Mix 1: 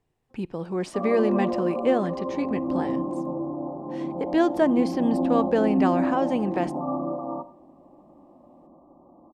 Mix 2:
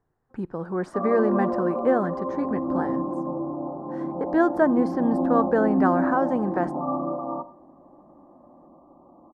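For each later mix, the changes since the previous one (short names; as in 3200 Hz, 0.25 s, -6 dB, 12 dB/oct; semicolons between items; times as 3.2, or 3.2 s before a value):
master: add resonant high shelf 2000 Hz -9.5 dB, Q 3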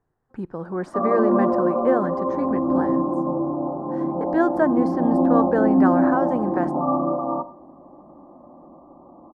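background +5.5 dB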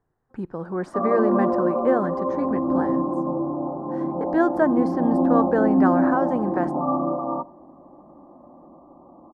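background: send -10.5 dB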